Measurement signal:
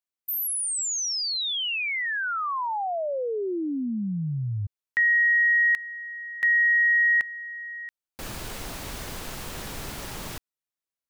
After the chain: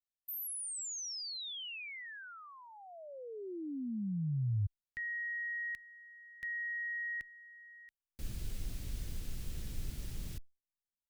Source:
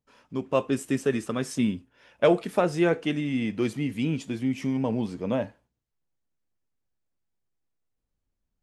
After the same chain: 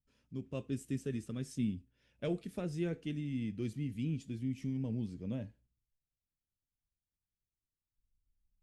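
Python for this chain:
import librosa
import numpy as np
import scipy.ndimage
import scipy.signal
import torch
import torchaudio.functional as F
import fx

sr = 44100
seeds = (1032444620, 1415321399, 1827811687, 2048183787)

y = fx.tone_stack(x, sr, knobs='10-0-1')
y = y * 10.0 ** (7.5 / 20.0)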